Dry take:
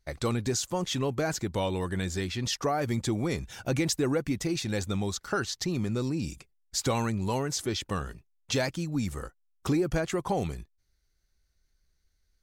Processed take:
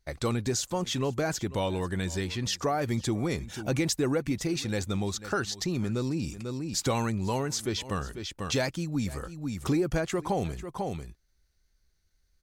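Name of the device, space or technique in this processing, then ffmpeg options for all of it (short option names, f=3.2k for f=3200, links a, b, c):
ducked delay: -filter_complex "[0:a]asplit=3[a][b][c];[b]adelay=494,volume=-4dB[d];[c]apad=whole_len=569927[e];[d][e]sidechaincompress=threshold=-45dB:ratio=12:attack=8.2:release=166[f];[a][f]amix=inputs=2:normalize=0"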